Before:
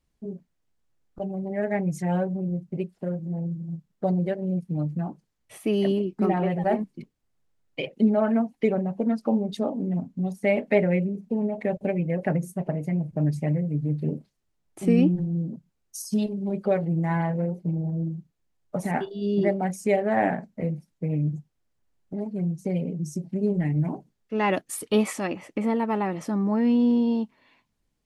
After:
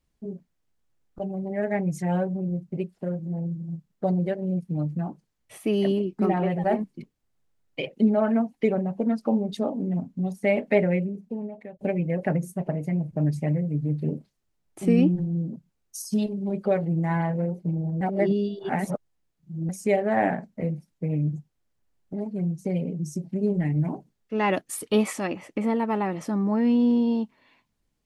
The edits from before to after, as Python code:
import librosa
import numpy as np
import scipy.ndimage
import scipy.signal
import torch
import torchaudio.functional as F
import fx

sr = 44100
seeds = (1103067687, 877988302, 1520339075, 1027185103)

y = fx.edit(x, sr, fx.fade_out_to(start_s=10.85, length_s=0.94, floor_db=-22.5),
    fx.reverse_span(start_s=18.01, length_s=1.68), tone=tone)